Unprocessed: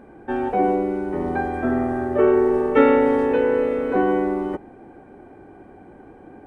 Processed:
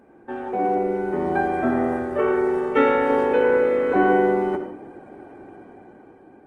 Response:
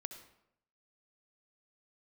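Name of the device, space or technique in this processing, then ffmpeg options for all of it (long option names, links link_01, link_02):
far-field microphone of a smart speaker: -filter_complex "[0:a]asettb=1/sr,asplit=3[link_01][link_02][link_03];[link_01]atrim=end=1.974[link_04];[link_02]atrim=start=1.97:end=3.1,asetpts=PTS-STARTPTS,afade=type=in:duration=0.004:curve=qsin,afade=type=out:start_time=1.126:duration=0.004:curve=qsin,equalizer=frequency=410:width=0.55:gain=-5[link_05];[link_03]atrim=start=3.096[link_06];[link_04][link_05]acrossfade=duration=0.004:curve1=hsin:curve2=qsin[link_07];[link_07][link_06]acrossfade=duration=0.004:curve1=qsin:curve2=hsin[link_08];[1:a]atrim=start_sample=2205[link_09];[link_08][link_09]afir=irnorm=-1:irlink=0,highpass=frequency=150:poles=1,dynaudnorm=framelen=270:gausssize=7:maxgain=8.5dB,volume=-2dB" -ar 48000 -c:a libopus -b:a 20k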